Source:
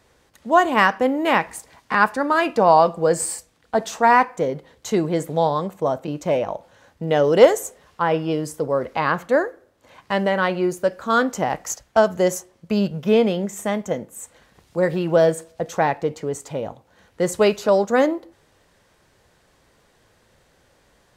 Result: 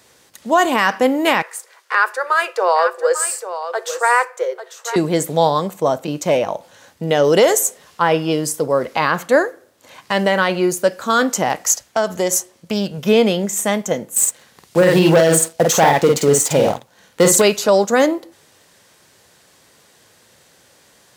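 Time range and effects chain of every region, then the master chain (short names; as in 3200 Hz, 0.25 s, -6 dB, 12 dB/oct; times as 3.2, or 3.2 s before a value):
1.42–4.96 rippled Chebyshev high-pass 360 Hz, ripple 9 dB + echo 0.845 s -11 dB
11.52–12.98 bell 150 Hz -5.5 dB 0.35 oct + compressor 2:1, threshold -22 dBFS + Doppler distortion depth 0.1 ms
14.16–17.42 sample leveller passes 2 + doubler 49 ms -3 dB
whole clip: HPF 110 Hz 12 dB/oct; high shelf 3100 Hz +11 dB; limiter -7.5 dBFS; gain +4 dB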